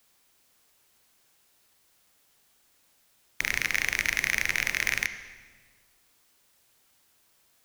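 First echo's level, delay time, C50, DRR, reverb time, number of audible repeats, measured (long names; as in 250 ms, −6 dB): no echo audible, no echo audible, 11.0 dB, 10.5 dB, 1.5 s, no echo audible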